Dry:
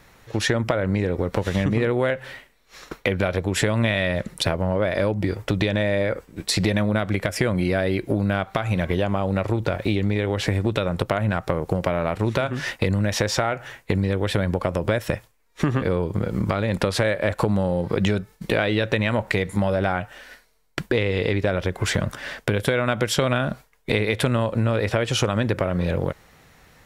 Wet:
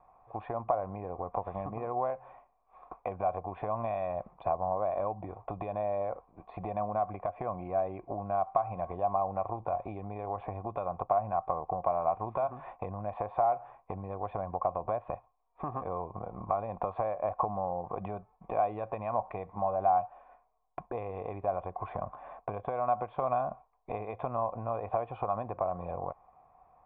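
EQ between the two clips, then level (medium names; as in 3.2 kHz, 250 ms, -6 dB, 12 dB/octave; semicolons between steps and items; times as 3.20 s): cascade formant filter a; bass shelf 67 Hz +9 dB; +6.0 dB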